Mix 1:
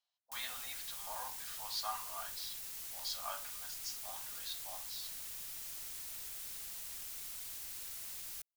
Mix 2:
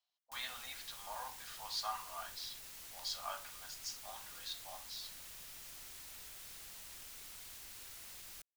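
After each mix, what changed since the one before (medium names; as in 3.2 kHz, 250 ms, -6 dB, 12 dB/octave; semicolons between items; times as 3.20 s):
background: add treble shelf 5.6 kHz -8 dB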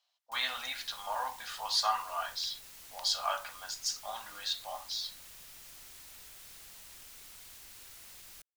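speech +10.5 dB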